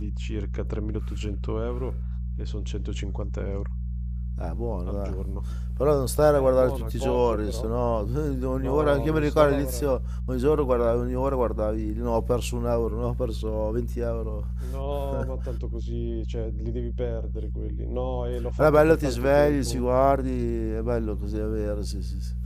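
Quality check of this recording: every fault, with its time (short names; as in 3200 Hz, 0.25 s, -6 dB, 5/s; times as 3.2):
hum 60 Hz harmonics 3 -30 dBFS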